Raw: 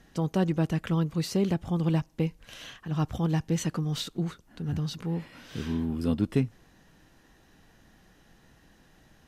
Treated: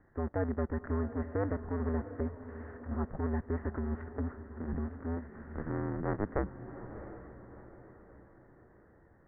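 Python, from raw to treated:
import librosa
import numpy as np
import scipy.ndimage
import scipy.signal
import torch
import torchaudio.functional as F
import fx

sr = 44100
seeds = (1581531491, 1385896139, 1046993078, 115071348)

p1 = fx.cycle_switch(x, sr, every=2, mode='inverted')
p2 = fx.level_steps(p1, sr, step_db=17)
p3 = p1 + (p2 * librosa.db_to_amplitude(-1.0))
p4 = scipy.signal.sosfilt(scipy.signal.cheby1(6, 1.0, 1900.0, 'lowpass', fs=sr, output='sos'), p3)
p5 = fx.echo_diffused(p4, sr, ms=696, feedback_pct=46, wet_db=-11.5)
y = p5 * librosa.db_to_amplitude(-8.5)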